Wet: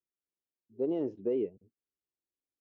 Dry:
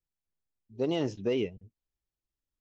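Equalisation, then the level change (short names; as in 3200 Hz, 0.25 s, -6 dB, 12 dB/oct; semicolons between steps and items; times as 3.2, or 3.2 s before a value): band-pass 370 Hz, Q 1.6; 0.0 dB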